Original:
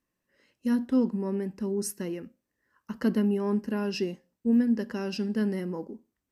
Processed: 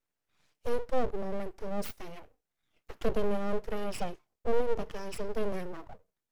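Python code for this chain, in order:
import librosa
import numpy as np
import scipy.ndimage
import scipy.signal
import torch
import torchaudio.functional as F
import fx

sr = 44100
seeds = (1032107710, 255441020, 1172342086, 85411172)

y = fx.env_flanger(x, sr, rest_ms=6.9, full_db=-24.0)
y = np.abs(y)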